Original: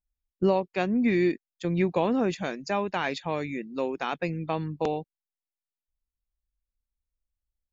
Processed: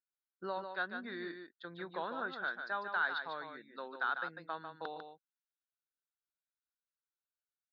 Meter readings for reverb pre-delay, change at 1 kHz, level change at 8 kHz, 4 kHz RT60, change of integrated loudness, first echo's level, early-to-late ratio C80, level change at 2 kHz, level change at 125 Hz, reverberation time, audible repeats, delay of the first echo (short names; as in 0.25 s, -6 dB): none, -7.5 dB, n/a, none, -11.5 dB, -7.0 dB, none, -1.5 dB, -26.0 dB, none, 1, 0.148 s